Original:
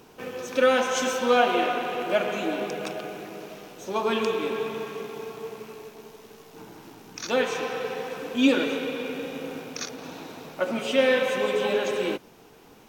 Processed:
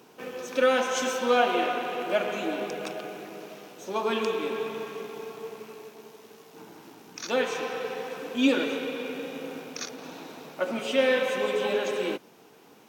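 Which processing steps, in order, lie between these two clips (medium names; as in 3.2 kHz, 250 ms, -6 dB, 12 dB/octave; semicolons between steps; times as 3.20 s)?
high-pass 160 Hz 12 dB/octave; trim -2 dB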